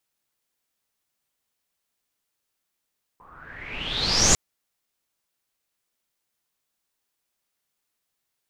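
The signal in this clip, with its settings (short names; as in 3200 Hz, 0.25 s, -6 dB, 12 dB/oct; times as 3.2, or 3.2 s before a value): swept filtered noise pink, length 1.15 s lowpass, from 1000 Hz, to 7100 Hz, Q 9.4, exponential, gain ramp +36 dB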